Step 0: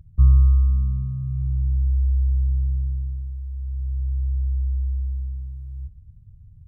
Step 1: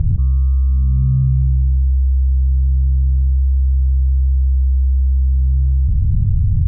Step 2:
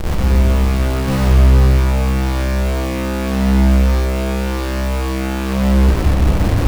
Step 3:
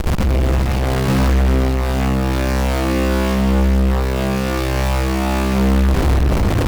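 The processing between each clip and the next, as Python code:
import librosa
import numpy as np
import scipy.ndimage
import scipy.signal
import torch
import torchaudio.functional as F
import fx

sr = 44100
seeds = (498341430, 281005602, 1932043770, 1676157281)

y1 = scipy.signal.sosfilt(scipy.signal.butter(2, 1100.0, 'lowpass', fs=sr, output='sos'), x)
y1 = fx.env_flatten(y1, sr, amount_pct=100)
y1 = F.gain(torch.from_numpy(y1), -2.5).numpy()
y2 = fx.schmitt(y1, sr, flips_db=-20.5)
y2 = fx.room_shoebox(y2, sr, seeds[0], volume_m3=140.0, walls='hard', distance_m=0.63)
y2 = F.gain(torch.from_numpy(y2), -6.0).numpy()
y3 = fx.tube_stage(y2, sr, drive_db=21.0, bias=0.6)
y3 = y3 + 10.0 ** (-10.5 / 20.0) * np.pad(y3, (int(406 * sr / 1000.0), 0))[:len(y3)]
y3 = F.gain(torch.from_numpy(y3), 8.0).numpy()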